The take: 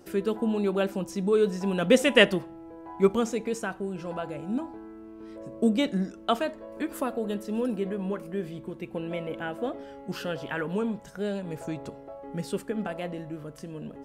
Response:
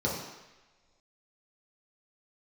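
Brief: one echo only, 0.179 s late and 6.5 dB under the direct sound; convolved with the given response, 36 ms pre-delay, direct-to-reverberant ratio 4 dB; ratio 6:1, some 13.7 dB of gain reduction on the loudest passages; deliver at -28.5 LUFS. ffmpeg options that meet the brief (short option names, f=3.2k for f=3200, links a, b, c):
-filter_complex "[0:a]acompressor=threshold=-28dB:ratio=6,aecho=1:1:179:0.473,asplit=2[a][b];[1:a]atrim=start_sample=2205,adelay=36[c];[b][c]afir=irnorm=-1:irlink=0,volume=-13dB[d];[a][d]amix=inputs=2:normalize=0,volume=2dB"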